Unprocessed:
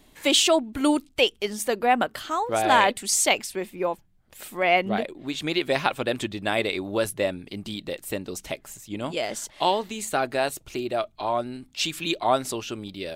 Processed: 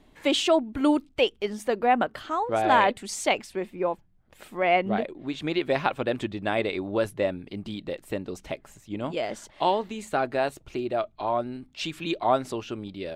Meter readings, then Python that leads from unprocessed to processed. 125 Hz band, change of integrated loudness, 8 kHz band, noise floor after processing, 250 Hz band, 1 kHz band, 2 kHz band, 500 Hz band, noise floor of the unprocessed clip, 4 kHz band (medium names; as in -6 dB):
0.0 dB, -2.0 dB, -12.0 dB, -59 dBFS, 0.0 dB, -1.0 dB, -3.5 dB, -0.5 dB, -58 dBFS, -6.5 dB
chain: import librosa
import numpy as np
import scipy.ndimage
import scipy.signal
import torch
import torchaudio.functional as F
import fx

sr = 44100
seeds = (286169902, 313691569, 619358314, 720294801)

y = fx.lowpass(x, sr, hz=1800.0, slope=6)